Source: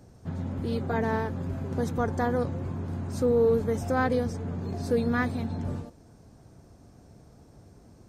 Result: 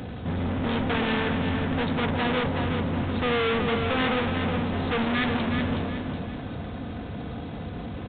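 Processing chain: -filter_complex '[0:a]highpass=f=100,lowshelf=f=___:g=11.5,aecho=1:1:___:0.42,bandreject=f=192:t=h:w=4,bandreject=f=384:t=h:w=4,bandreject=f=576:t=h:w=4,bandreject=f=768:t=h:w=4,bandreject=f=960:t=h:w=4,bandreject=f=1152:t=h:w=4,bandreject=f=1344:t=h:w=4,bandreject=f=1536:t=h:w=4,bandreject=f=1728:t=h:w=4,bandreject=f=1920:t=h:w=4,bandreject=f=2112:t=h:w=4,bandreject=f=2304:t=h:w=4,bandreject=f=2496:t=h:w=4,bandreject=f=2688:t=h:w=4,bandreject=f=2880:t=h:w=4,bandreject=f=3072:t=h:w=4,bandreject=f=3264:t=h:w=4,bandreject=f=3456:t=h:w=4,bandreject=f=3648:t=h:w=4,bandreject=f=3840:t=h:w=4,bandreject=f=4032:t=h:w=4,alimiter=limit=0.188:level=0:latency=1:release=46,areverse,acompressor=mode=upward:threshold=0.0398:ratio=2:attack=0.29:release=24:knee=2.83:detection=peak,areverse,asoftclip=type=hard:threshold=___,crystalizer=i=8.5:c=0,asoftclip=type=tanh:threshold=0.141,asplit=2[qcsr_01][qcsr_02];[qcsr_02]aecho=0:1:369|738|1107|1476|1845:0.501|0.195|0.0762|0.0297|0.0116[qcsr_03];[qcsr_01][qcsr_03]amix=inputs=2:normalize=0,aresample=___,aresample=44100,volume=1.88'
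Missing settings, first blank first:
160, 4, 0.0266, 8000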